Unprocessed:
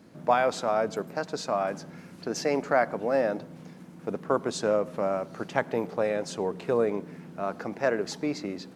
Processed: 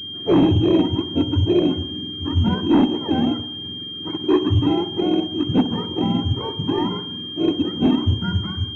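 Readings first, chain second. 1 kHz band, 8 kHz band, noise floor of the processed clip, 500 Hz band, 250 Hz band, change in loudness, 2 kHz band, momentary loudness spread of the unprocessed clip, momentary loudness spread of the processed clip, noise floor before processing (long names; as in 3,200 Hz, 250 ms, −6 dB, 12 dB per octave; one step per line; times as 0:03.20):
0.0 dB, below −15 dB, −32 dBFS, +2.0 dB, +16.0 dB, +8.0 dB, −4.5 dB, 12 LU, 10 LU, −48 dBFS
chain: frequency axis turned over on the octave scale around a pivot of 650 Hz
in parallel at −6.5 dB: soft clipping −29 dBFS, distortion −8 dB
on the sum: low shelf with overshoot 470 Hz +11 dB, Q 3
hard clipping −11 dBFS, distortion −12 dB
on a send: delay with a low-pass on its return 63 ms, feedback 54%, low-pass 1,100 Hz, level −11.5 dB
on the sum: switching amplifier with a slow clock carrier 3,200 Hz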